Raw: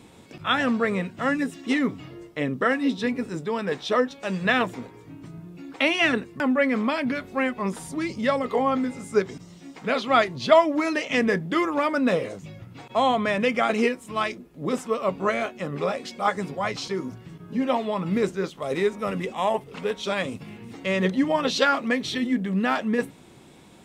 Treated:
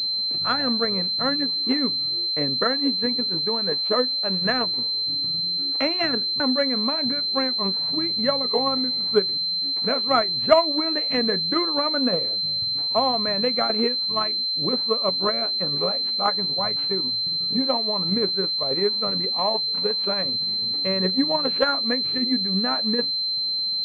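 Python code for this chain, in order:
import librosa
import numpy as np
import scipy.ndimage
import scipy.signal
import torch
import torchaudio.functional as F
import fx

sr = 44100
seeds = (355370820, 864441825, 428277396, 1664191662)

y = fx.transient(x, sr, attack_db=5, sustain_db=-4)
y = fx.pwm(y, sr, carrier_hz=4100.0)
y = y * 10.0 ** (-3.0 / 20.0)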